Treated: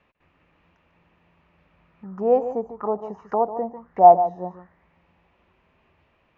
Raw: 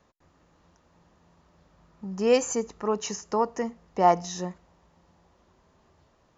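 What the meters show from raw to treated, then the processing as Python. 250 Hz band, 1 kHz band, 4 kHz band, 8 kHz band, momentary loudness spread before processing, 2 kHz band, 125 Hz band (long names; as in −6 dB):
−1.0 dB, +8.5 dB, below −25 dB, can't be measured, 14 LU, below −10 dB, −2.0 dB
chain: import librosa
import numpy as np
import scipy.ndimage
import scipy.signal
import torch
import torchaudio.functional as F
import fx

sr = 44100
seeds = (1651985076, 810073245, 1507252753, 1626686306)

y = x + 10.0 ** (-11.5 / 20.0) * np.pad(x, (int(147 * sr / 1000.0), 0))[:len(x)]
y = fx.envelope_lowpass(y, sr, base_hz=730.0, top_hz=2600.0, q=4.7, full_db=-26.5, direction='down')
y = y * 10.0 ** (-2.5 / 20.0)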